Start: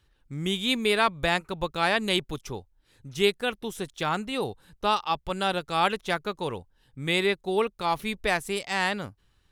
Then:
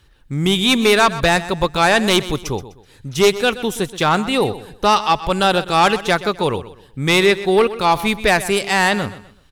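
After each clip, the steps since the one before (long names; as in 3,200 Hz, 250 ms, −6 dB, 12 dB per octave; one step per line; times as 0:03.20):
in parallel at −3.5 dB: sine wavefolder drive 10 dB, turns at −7 dBFS
on the sum: repeating echo 126 ms, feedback 32%, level −15 dB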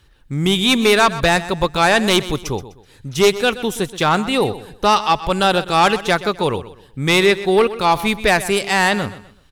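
no processing that can be heard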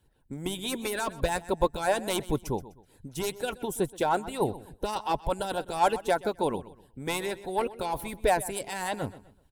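Butterworth band-reject 1,200 Hz, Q 5.2
flat-topped bell 3,200 Hz −10.5 dB 2.3 octaves
harmonic and percussive parts rebalanced harmonic −15 dB
level −5 dB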